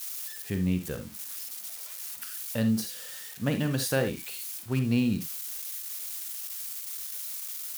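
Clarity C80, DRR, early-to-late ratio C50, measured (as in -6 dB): 19.5 dB, 8.0 dB, 10.0 dB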